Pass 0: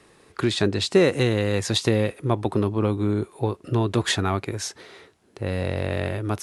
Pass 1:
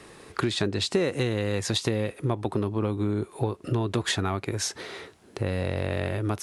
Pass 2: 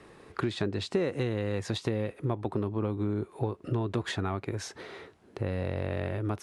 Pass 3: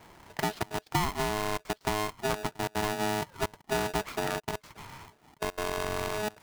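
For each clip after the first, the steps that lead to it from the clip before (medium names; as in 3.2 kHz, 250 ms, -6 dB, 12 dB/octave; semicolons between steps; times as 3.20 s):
compression 3:1, threshold -33 dBFS, peak gain reduction 15 dB; trim +6.5 dB
treble shelf 3.6 kHz -11.5 dB; trim -3.5 dB
median filter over 15 samples; trance gate "xxxxxxxx.x.x" 191 bpm -24 dB; polarity switched at an audio rate 530 Hz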